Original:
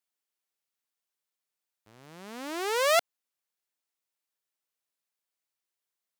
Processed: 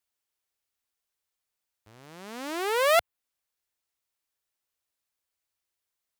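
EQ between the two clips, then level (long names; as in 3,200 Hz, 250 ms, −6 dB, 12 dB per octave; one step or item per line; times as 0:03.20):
dynamic equaliser 6,000 Hz, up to −7 dB, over −45 dBFS, Q 1.2
low shelf with overshoot 110 Hz +7.5 dB, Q 1.5
+2.5 dB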